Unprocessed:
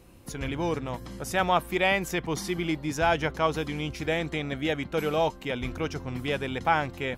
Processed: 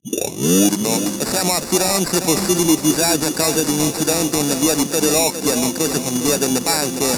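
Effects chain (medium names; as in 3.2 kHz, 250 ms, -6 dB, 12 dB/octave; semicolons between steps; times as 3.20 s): tape start-up on the opening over 1.02 s; high-pass 190 Hz 24 dB/octave; bass shelf 500 Hz +8.5 dB; sample-and-hold 14×; reverse; upward compressor, threshold -26 dBFS; reverse; high-order bell 7.4 kHz +13.5 dB; loudness maximiser +11 dB; bit-crushed delay 408 ms, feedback 35%, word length 6-bit, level -8.5 dB; trim -2 dB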